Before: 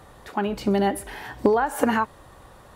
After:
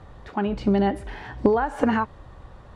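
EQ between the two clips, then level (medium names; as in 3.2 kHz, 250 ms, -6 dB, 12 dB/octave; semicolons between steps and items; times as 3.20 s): distance through air 110 m; bass shelf 150 Hz +11 dB; -1.5 dB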